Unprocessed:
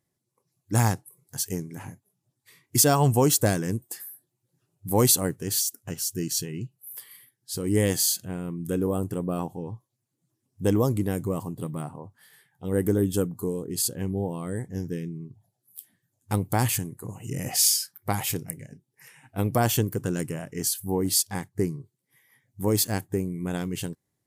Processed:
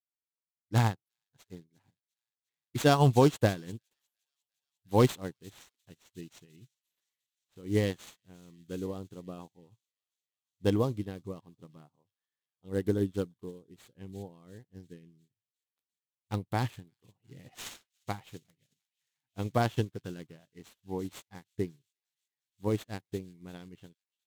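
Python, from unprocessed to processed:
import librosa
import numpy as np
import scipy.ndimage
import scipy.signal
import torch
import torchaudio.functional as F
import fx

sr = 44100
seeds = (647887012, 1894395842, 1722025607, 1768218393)

p1 = scipy.ndimage.median_filter(x, 9, mode='constant')
p2 = fx.peak_eq(p1, sr, hz=3800.0, db=9.0, octaves=0.97)
p3 = p2 + fx.echo_wet_highpass(p2, sr, ms=352, feedback_pct=81, hz=3100.0, wet_db=-12, dry=0)
p4 = fx.vibrato(p3, sr, rate_hz=0.45, depth_cents=7.0)
y = fx.upward_expand(p4, sr, threshold_db=-44.0, expansion=2.5)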